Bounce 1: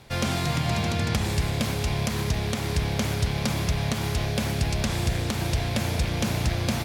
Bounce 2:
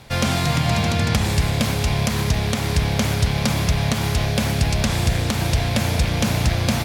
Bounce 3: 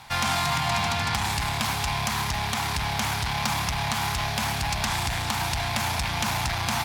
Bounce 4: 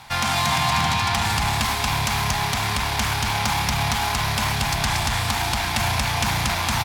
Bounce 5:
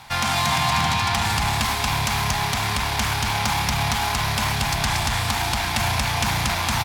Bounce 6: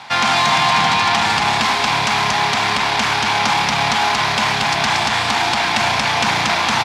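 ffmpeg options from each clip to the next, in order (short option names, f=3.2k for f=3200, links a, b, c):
-af "equalizer=f=370:t=o:w=0.29:g=-5.5,volume=6dB"
-af "asoftclip=type=tanh:threshold=-15.5dB,lowshelf=f=660:t=q:w=3:g=-8.5"
-af "aecho=1:1:233:0.708,volume=2.5dB"
-af "acrusher=bits=10:mix=0:aa=0.000001"
-filter_complex "[0:a]asplit=2[a][b];[b]aeval=exprs='(mod(6.31*val(0)+1,2)-1)/6.31':c=same,volume=-10dB[c];[a][c]amix=inputs=2:normalize=0,highpass=230,lowpass=5.2k,volume=6dB"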